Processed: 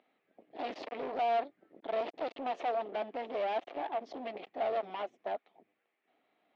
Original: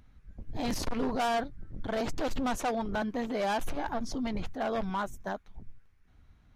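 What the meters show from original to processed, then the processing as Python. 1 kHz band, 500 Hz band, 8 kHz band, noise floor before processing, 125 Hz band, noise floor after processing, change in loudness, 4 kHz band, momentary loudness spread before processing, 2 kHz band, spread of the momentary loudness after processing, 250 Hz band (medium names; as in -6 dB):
-1.5 dB, -0.5 dB, under -25 dB, -61 dBFS, under -20 dB, -81 dBFS, -3.0 dB, -7.5 dB, 9 LU, -7.5 dB, 10 LU, -14.0 dB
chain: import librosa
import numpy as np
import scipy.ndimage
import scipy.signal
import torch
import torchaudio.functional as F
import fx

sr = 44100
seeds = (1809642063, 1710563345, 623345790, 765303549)

y = np.clip(x, -10.0 ** (-32.0 / 20.0), 10.0 ** (-32.0 / 20.0))
y = fx.cabinet(y, sr, low_hz=340.0, low_slope=24, high_hz=3300.0, hz=(690.0, 1000.0, 1500.0), db=(7, -6, -10))
y = fx.doppler_dist(y, sr, depth_ms=0.16)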